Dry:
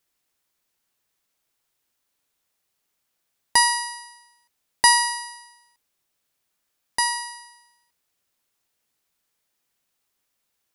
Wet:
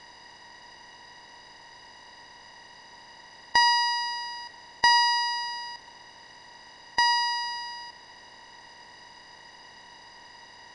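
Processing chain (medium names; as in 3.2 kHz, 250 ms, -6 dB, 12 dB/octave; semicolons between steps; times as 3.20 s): spectral levelling over time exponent 0.4; low-pass 5.3 kHz 24 dB/octave; de-hum 51.67 Hz, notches 24; reverberation RT60 0.75 s, pre-delay 15 ms, DRR 12 dB; trim -4 dB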